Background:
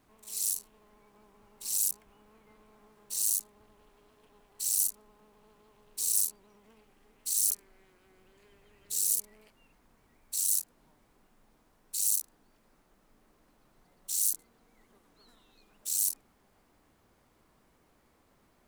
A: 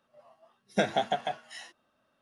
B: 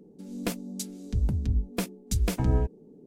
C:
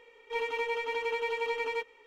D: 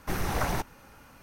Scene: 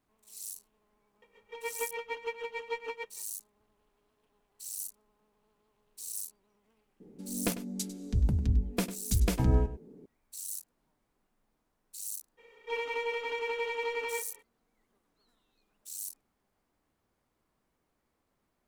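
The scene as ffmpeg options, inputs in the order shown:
-filter_complex "[3:a]asplit=2[a][b];[0:a]volume=-11.5dB[c];[a]aeval=exprs='val(0)*pow(10,-18*(0.5-0.5*cos(2*PI*6.6*n/s))/20)':c=same[d];[2:a]asplit=2[e][f];[f]adelay=99.13,volume=-14dB,highshelf=f=4k:g=-2.23[g];[e][g]amix=inputs=2:normalize=0[h];[b]asplit=2[i][j];[j]adelay=34,volume=-7.5dB[k];[i][k]amix=inputs=2:normalize=0[l];[d]atrim=end=2.06,asetpts=PTS-STARTPTS,volume=-1dB,afade=t=in:d=0.004:c=hsin,afade=t=out:st=2.056:d=0.004:c=hsin,adelay=1220[m];[h]atrim=end=3.06,asetpts=PTS-STARTPTS,volume=-1dB,afade=t=in:d=0.004:c=hsin,afade=t=out:st=3.056:d=0.004:c=hsin,adelay=7000[n];[l]atrim=end=2.06,asetpts=PTS-STARTPTS,volume=-2dB,afade=t=in:d=0.02,afade=t=out:st=2.04:d=0.02,adelay=12370[o];[c][m][n][o]amix=inputs=4:normalize=0"

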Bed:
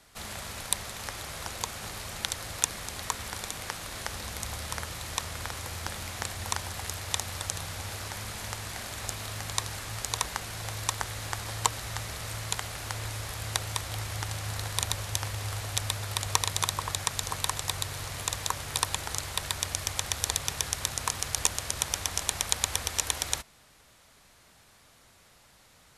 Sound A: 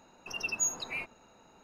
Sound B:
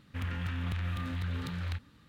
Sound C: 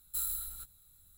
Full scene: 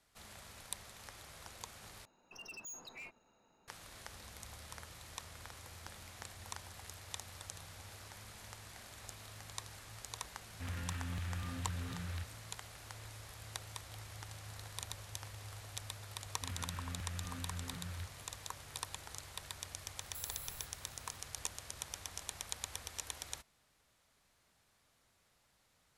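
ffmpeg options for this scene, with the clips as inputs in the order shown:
-filter_complex "[2:a]asplit=2[a][b];[0:a]volume=-15dB[c];[1:a]asoftclip=type=hard:threshold=-34dB[d];[3:a]acompressor=threshold=-38dB:ratio=6:attack=3.2:release=140:knee=1:detection=peak[e];[c]asplit=2[f][g];[f]atrim=end=2.054[h];[d]atrim=end=1.63,asetpts=PTS-STARTPTS,volume=-11.5dB[i];[g]atrim=start=3.676[j];[a]atrim=end=2.08,asetpts=PTS-STARTPTS,volume=-7dB,afade=t=in:d=0.004:c=hsin,afade=t=out:st=2.076:d=0.004:c=hsin,adelay=10460[k];[b]atrim=end=2.08,asetpts=PTS-STARTPTS,volume=-10dB,afade=t=in:d=0.004:c=hsin,afade=t=out:st=2.076:d=0.004:c=hsin,adelay=16280[l];[e]atrim=end=1.17,asetpts=PTS-STARTPTS,volume=-5.5dB,afade=t=in:d=0.004:c=hsin,afade=t=out:st=1.166:d=0.004:c=hsin,adelay=20010[m];[h][i]acrossfade=d=0.004:c1=hsin:c2=hsin[n];[n][j]acrossfade=d=0.004:c1=hsin:c2=hsin[o];[o][k][l][m]amix=inputs=4:normalize=0"

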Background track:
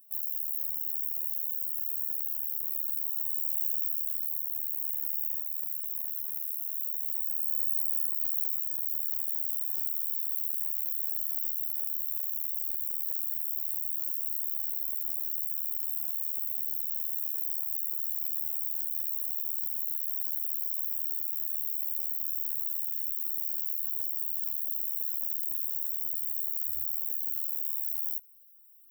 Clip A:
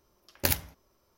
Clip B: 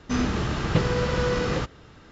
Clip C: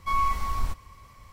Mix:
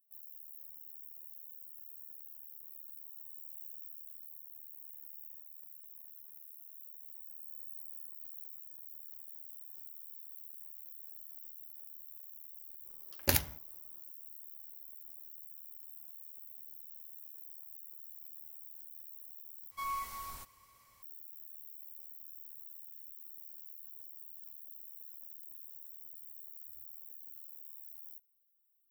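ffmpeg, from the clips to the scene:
-filter_complex "[0:a]volume=-18dB[a];[3:a]aemphasis=mode=production:type=bsi[b];[a]asplit=2[c][d];[c]atrim=end=19.714[e];[b]atrim=end=1.32,asetpts=PTS-STARTPTS,volume=-12.5dB[f];[d]atrim=start=21.026[g];[1:a]atrim=end=1.17,asetpts=PTS-STARTPTS,volume=-2dB,afade=t=in:d=0.02,afade=t=out:st=1.15:d=0.02,adelay=566244S[h];[e][f]acrossfade=d=0.004:c1=hsin:c2=hsin[i];[i][g]acrossfade=d=0.004:c1=hsin:c2=hsin[j];[j][h]amix=inputs=2:normalize=0"

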